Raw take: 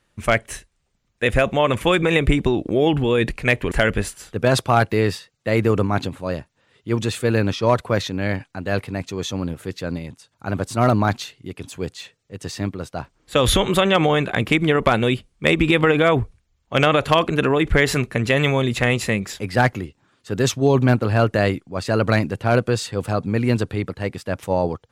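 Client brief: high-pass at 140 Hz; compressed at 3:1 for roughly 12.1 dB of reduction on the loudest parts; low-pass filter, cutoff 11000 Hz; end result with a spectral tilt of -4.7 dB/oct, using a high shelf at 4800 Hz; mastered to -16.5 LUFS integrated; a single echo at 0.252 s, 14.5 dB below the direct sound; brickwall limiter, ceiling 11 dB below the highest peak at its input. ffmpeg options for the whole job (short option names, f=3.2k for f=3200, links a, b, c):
-af "highpass=140,lowpass=11k,highshelf=f=4.8k:g=-6,acompressor=threshold=-29dB:ratio=3,alimiter=limit=-22dB:level=0:latency=1,aecho=1:1:252:0.188,volume=18dB"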